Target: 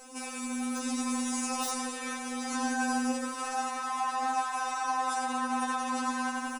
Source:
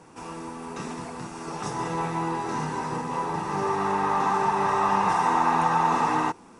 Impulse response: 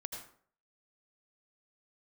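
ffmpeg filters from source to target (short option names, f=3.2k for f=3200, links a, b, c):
-filter_complex "[0:a]aemphasis=mode=production:type=75fm,asplit=2[a][b];[b]aecho=0:1:89|178|267|356|445|534|623:0.316|0.183|0.106|0.0617|0.0358|0.0208|0.012[c];[a][c]amix=inputs=2:normalize=0,acompressor=threshold=-32dB:ratio=3,acrossover=split=2500[d][e];[e]aeval=exprs='(mod(26.6*val(0)+1,2)-1)/26.6':c=same[f];[d][f]amix=inputs=2:normalize=0,alimiter=level_in=3.5dB:limit=-24dB:level=0:latency=1,volume=-3.5dB,dynaudnorm=f=610:g=3:m=5dB,afftfilt=real='re*3.46*eq(mod(b,12),0)':imag='im*3.46*eq(mod(b,12),0)':win_size=2048:overlap=0.75,volume=3dB"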